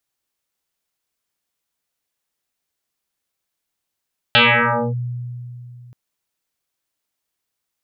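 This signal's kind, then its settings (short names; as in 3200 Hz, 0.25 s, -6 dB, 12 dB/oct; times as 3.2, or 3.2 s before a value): FM tone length 1.58 s, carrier 122 Hz, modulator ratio 2.92, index 10, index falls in 0.59 s linear, decay 2.99 s, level -8 dB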